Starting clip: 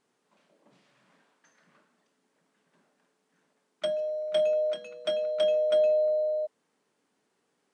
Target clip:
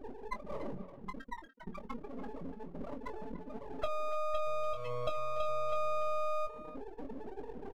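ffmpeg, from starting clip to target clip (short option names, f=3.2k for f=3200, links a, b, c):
-filter_complex "[0:a]aeval=exprs='val(0)+0.5*0.0251*sgn(val(0))':c=same,lowpass=f=2.2k:p=1,afftfilt=real='re*gte(hypot(re,im),0.0562)':imag='im*gte(hypot(re,im),0.0562)':win_size=1024:overlap=0.75,equalizer=f=1k:w=2.3:g=14,bandreject=f=60:t=h:w=6,bandreject=f=120:t=h:w=6,bandreject=f=180:t=h:w=6,acompressor=threshold=-37dB:ratio=5,aeval=exprs='max(val(0),0)':c=same,asplit=2[a][b];[b]adelay=22,volume=-8.5dB[c];[a][c]amix=inputs=2:normalize=0,asplit=2[d][e];[e]adelay=290,highpass=300,lowpass=3.4k,asoftclip=type=hard:threshold=-39dB,volume=-12dB[f];[d][f]amix=inputs=2:normalize=0,volume=6.5dB"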